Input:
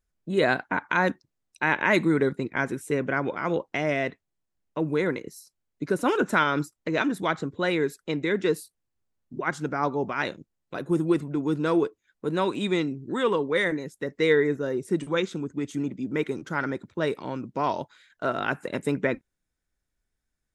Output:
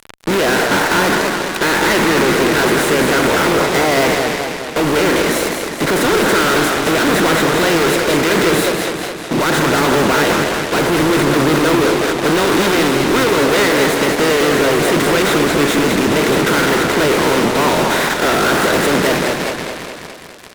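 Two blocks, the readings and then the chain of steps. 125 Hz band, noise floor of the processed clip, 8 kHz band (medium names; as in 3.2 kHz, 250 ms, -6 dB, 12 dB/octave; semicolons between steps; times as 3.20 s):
+11.5 dB, -28 dBFS, +26.0 dB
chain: spectral levelling over time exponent 0.4; frequency-shifting echo 182 ms, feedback 62%, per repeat +85 Hz, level -18.5 dB; fuzz box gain 40 dB, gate -34 dBFS; modulated delay 209 ms, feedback 58%, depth 118 cents, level -5.5 dB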